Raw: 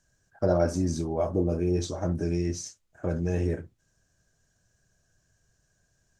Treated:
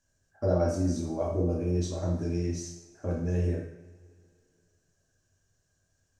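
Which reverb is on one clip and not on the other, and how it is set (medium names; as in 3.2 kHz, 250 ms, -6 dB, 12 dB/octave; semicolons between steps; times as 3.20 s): two-slope reverb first 0.67 s, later 2.6 s, from -20 dB, DRR -1 dB; trim -7 dB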